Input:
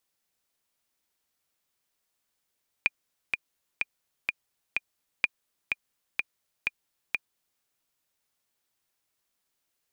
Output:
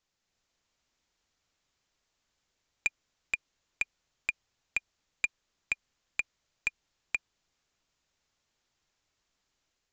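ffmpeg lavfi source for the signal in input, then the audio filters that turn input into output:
-f lavfi -i "aevalsrc='pow(10,(-8.5-4.5*gte(mod(t,5*60/126),60/126))/20)*sin(2*PI*2420*mod(t,60/126))*exp(-6.91*mod(t,60/126)/0.03)':d=4.76:s=44100"
-af "lowshelf=f=89:g=11.5,dynaudnorm=f=130:g=5:m=3.5dB,aresample=16000,asoftclip=type=tanh:threshold=-18dB,aresample=44100"

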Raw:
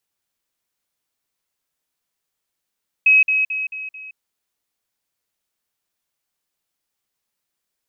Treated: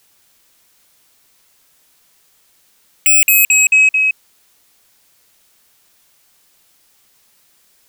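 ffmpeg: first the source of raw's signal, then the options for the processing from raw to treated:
-f lavfi -i "aevalsrc='pow(10,(-9-6*floor(t/0.22))/20)*sin(2*PI*2550*t)*clip(min(mod(t,0.22),0.17-mod(t,0.22))/0.005,0,1)':d=1.1:s=44100"
-af "highshelf=f=2.5k:g=3,aeval=exprs='0.447*sin(PI/2*7.94*val(0)/0.447)':c=same"

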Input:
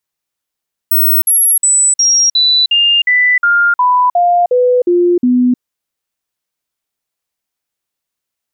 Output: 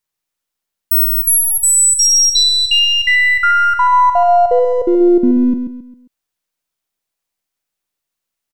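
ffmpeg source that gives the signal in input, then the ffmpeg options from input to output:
-f lavfi -i "aevalsrc='0.447*clip(min(mod(t,0.36),0.31-mod(t,0.36))/0.005,0,1)*sin(2*PI*15900*pow(2,-floor(t/0.36)/2)*mod(t,0.36))':d=4.68:s=44100"
-af "aeval=exprs='if(lt(val(0),0),0.708*val(0),val(0))':c=same,aecho=1:1:134|268|402|536:0.398|0.147|0.0545|0.0202"

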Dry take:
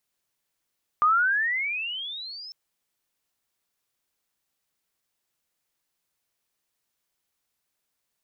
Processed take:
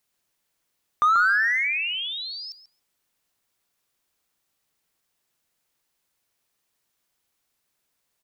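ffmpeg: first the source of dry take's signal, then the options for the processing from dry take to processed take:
-f lavfi -i "aevalsrc='pow(10,(-16-22*t/1.5)/20)*sin(2*PI*1190*1.5/(26*log(2)/12)*(exp(26*log(2)/12*t/1.5)-1))':d=1.5:s=44100"
-filter_complex "[0:a]asplit=2[a][b];[b]asoftclip=type=hard:threshold=-26dB,volume=-6dB[c];[a][c]amix=inputs=2:normalize=0,asplit=2[d][e];[e]adelay=137,lowpass=f=2k:p=1,volume=-6dB,asplit=2[f][g];[g]adelay=137,lowpass=f=2k:p=1,volume=0.21,asplit=2[h][i];[i]adelay=137,lowpass=f=2k:p=1,volume=0.21[j];[d][f][h][j]amix=inputs=4:normalize=0"

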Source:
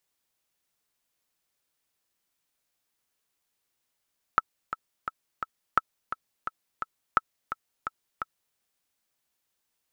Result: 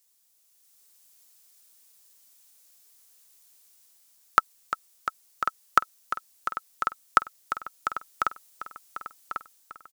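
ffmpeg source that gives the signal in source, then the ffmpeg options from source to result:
-f lavfi -i "aevalsrc='pow(10,(-6.5-11*gte(mod(t,4*60/172),60/172))/20)*sin(2*PI*1310*mod(t,60/172))*exp(-6.91*mod(t,60/172)/0.03)':d=4.18:s=44100"
-filter_complex "[0:a]bass=f=250:g=-6,treble=f=4k:g=14,dynaudnorm=f=270:g=5:m=8dB,asplit=2[a][b];[b]adelay=1095,lowpass=f=4.6k:p=1,volume=-8.5dB,asplit=2[c][d];[d]adelay=1095,lowpass=f=4.6k:p=1,volume=0.52,asplit=2[e][f];[f]adelay=1095,lowpass=f=4.6k:p=1,volume=0.52,asplit=2[g][h];[h]adelay=1095,lowpass=f=4.6k:p=1,volume=0.52,asplit=2[i][j];[j]adelay=1095,lowpass=f=4.6k:p=1,volume=0.52,asplit=2[k][l];[l]adelay=1095,lowpass=f=4.6k:p=1,volume=0.52[m];[c][e][g][i][k][m]amix=inputs=6:normalize=0[n];[a][n]amix=inputs=2:normalize=0"

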